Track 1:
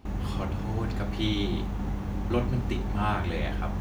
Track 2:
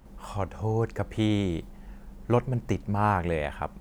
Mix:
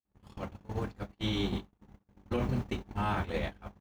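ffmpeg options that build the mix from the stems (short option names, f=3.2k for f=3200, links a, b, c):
-filter_complex "[0:a]highpass=f=81:p=1,volume=2dB[a];[1:a]highpass=130,asoftclip=type=tanh:threshold=-18dB,adelay=0.9,volume=-7dB[b];[a][b]amix=inputs=2:normalize=0,agate=range=-52dB:threshold=-26dB:ratio=16:detection=peak,alimiter=limit=-22dB:level=0:latency=1:release=52"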